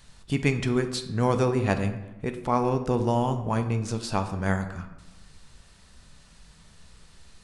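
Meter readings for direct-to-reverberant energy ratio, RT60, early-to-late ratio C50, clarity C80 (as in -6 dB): 7.0 dB, 1.0 s, 10.5 dB, 12.5 dB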